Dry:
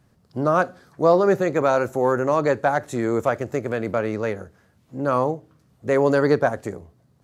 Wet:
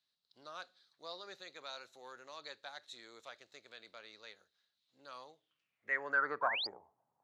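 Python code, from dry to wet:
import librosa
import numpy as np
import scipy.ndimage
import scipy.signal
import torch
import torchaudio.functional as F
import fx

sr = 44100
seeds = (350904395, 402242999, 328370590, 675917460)

y = fx.filter_sweep_bandpass(x, sr, from_hz=3900.0, to_hz=860.0, start_s=5.32, end_s=6.64, q=7.2)
y = fx.spec_paint(y, sr, seeds[0], shape='rise', start_s=6.41, length_s=0.26, low_hz=920.0, high_hz=5100.0, level_db=-37.0)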